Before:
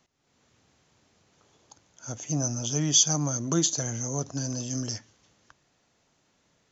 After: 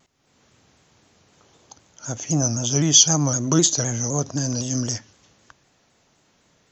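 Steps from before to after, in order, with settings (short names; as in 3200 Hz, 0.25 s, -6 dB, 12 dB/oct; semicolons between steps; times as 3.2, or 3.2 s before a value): shaped vibrato saw down 3.9 Hz, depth 100 cents; gain +7 dB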